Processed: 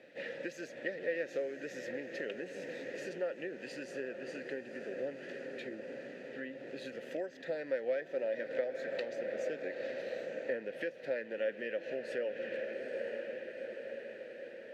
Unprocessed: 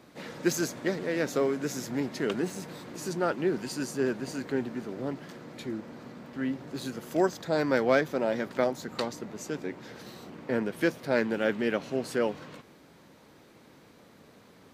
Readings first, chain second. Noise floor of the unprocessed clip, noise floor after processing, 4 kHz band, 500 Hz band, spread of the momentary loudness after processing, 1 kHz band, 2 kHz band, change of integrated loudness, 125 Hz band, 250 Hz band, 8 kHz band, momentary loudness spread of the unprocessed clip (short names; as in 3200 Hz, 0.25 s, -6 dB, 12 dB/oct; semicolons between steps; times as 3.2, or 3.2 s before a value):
-56 dBFS, -50 dBFS, -11.0 dB, -6.0 dB, 8 LU, -17.5 dB, -6.5 dB, -9.5 dB, -19.5 dB, -15.0 dB, under -15 dB, 15 LU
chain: bell 480 Hz -6 dB 1.1 oct; diffused feedback echo 0.878 s, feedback 59%, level -12 dB; compressor 16:1, threshold -35 dBFS, peak gain reduction 15.5 dB; vowel filter e; gain +12.5 dB